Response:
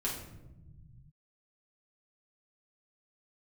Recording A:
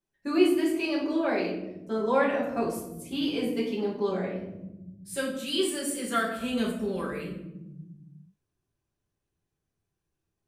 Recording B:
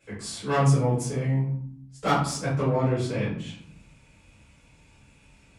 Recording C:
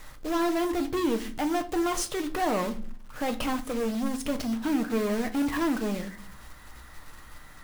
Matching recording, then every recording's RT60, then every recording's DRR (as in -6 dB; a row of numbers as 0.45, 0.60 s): A; 1.0, 0.65, 0.45 s; -6.0, -11.0, 6.5 dB